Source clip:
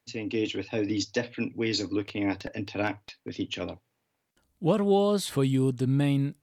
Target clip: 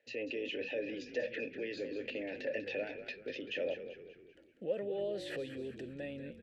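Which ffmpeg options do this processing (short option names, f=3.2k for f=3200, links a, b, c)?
-filter_complex "[0:a]acompressor=threshold=-30dB:ratio=6,alimiter=level_in=10dB:limit=-24dB:level=0:latency=1:release=25,volume=-10dB,asplit=3[a][b][c];[a]bandpass=f=530:t=q:w=8,volume=0dB[d];[b]bandpass=f=1.84k:t=q:w=8,volume=-6dB[e];[c]bandpass=f=2.48k:t=q:w=8,volume=-9dB[f];[d][e][f]amix=inputs=3:normalize=0,asplit=6[g][h][i][j][k][l];[h]adelay=194,afreqshift=-48,volume=-10.5dB[m];[i]adelay=388,afreqshift=-96,volume=-17.1dB[n];[j]adelay=582,afreqshift=-144,volume=-23.6dB[o];[k]adelay=776,afreqshift=-192,volume=-30.2dB[p];[l]adelay=970,afreqshift=-240,volume=-36.7dB[q];[g][m][n][o][p][q]amix=inputs=6:normalize=0,volume=15.5dB"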